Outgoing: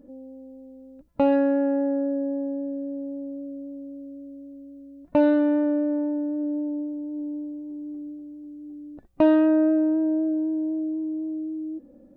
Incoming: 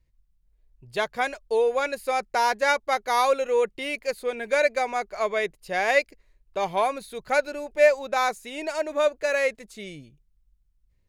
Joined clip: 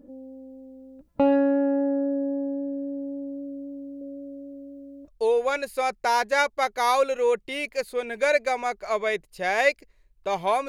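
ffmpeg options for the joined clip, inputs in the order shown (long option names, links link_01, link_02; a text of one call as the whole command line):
ffmpeg -i cue0.wav -i cue1.wav -filter_complex "[0:a]asettb=1/sr,asplit=3[link_01][link_02][link_03];[link_01]atrim=end=4.014[link_04];[link_02]atrim=start=4.01:end=5.08,asetpts=PTS-STARTPTS,afade=type=in:duration=0.004:curve=qsin,afade=type=out:start_time=1.066:duration=0.004:curve=qsin,equalizer=frequency=500:width_type=o:width=0.51:gain=10.5[link_05];[link_03]atrim=start=5.076[link_06];[link_04][link_05]acrossfade=duration=0.004:curve1=hsin:curve2=qsin[link_07];[link_07][link_06]acrossfade=duration=0.004:curve1=qsin:curve2=hsin,apad=whole_dur=10.68,atrim=end=10.68,atrim=end=5.082[link_08];[1:a]atrim=start=1.378:end=6.98[link_09];[link_08][link_09]acrossfade=duration=0.004:curve1=hsin:curve2=hsin" out.wav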